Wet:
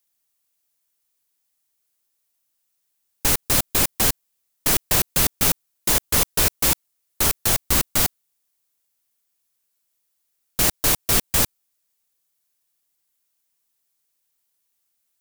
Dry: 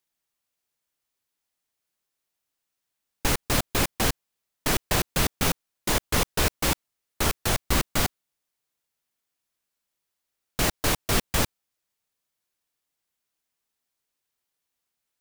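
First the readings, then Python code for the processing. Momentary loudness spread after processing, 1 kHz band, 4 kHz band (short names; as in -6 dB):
6 LU, +0.5 dB, +4.0 dB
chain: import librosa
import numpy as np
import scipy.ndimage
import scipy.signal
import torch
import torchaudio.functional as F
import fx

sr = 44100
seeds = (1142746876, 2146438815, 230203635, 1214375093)

y = fx.high_shelf(x, sr, hz=5800.0, db=12.0)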